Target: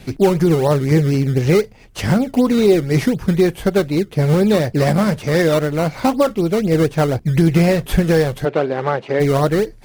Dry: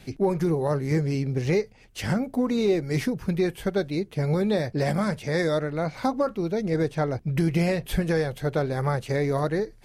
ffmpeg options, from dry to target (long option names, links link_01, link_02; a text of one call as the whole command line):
ffmpeg -i in.wav -filter_complex "[0:a]asplit=2[link_01][link_02];[link_02]acrusher=samples=18:mix=1:aa=0.000001:lfo=1:lforange=18:lforate=4,volume=-6.5dB[link_03];[link_01][link_03]amix=inputs=2:normalize=0,asplit=3[link_04][link_05][link_06];[link_04]afade=type=out:start_time=8.44:duration=0.02[link_07];[link_05]highpass=260,lowpass=2800,afade=type=in:start_time=8.44:duration=0.02,afade=type=out:start_time=9.19:duration=0.02[link_08];[link_06]afade=type=in:start_time=9.19:duration=0.02[link_09];[link_07][link_08][link_09]amix=inputs=3:normalize=0,volume=6.5dB" out.wav